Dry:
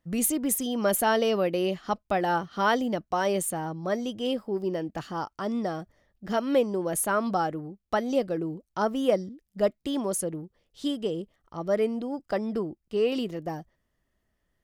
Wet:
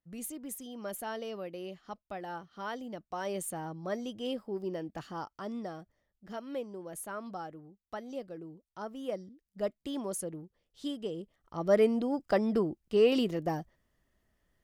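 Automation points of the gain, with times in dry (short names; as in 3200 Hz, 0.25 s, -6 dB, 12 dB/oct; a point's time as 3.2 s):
2.74 s -15 dB
3.58 s -7 dB
5.14 s -7 dB
6.45 s -14.5 dB
8.88 s -14.5 dB
9.83 s -7.5 dB
11.16 s -7.5 dB
11.74 s +1 dB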